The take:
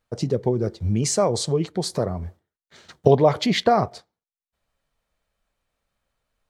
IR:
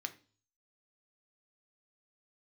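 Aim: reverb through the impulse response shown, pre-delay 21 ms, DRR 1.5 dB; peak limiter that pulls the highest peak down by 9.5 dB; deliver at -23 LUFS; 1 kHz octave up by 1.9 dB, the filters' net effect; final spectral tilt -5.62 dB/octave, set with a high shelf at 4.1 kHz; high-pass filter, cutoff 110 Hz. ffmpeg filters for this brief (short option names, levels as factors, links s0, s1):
-filter_complex "[0:a]highpass=110,equalizer=f=1000:t=o:g=3.5,highshelf=f=4100:g=-8.5,alimiter=limit=0.316:level=0:latency=1,asplit=2[s0][s1];[1:a]atrim=start_sample=2205,adelay=21[s2];[s1][s2]afir=irnorm=-1:irlink=0,volume=0.891[s3];[s0][s3]amix=inputs=2:normalize=0,volume=0.944"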